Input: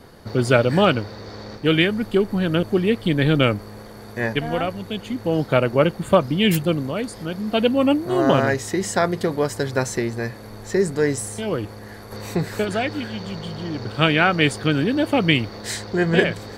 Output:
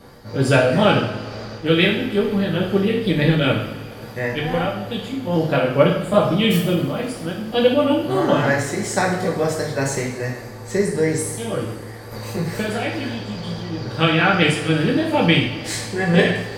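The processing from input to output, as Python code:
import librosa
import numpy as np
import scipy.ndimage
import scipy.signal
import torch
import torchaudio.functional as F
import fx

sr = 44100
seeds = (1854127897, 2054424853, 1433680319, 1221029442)

y = fx.pitch_ramps(x, sr, semitones=1.5, every_ms=206)
y = fx.rev_double_slope(y, sr, seeds[0], early_s=0.64, late_s=3.0, knee_db=-18, drr_db=-2.0)
y = y * 10.0 ** (-1.5 / 20.0)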